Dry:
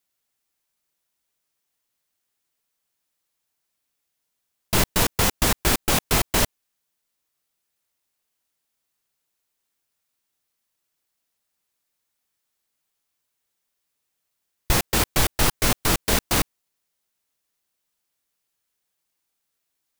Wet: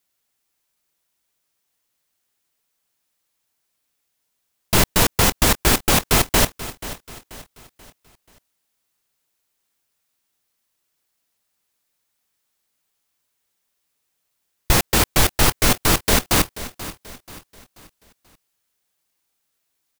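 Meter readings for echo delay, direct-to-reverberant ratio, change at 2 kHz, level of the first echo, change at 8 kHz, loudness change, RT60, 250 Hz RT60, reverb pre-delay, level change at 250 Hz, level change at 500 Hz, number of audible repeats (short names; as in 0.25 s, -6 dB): 0.484 s, none, +4.0 dB, -15.5 dB, +4.0 dB, +4.0 dB, none, none, none, +4.0 dB, +4.0 dB, 3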